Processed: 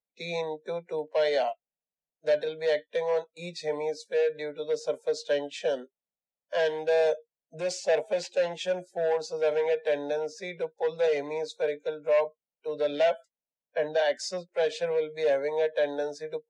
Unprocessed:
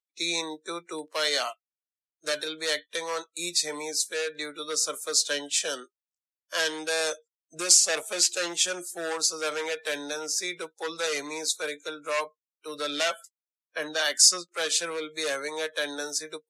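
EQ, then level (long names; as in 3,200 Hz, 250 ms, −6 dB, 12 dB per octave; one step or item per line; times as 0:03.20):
low-pass filter 1,300 Hz 12 dB per octave
phaser with its sweep stopped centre 330 Hz, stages 6
+8.5 dB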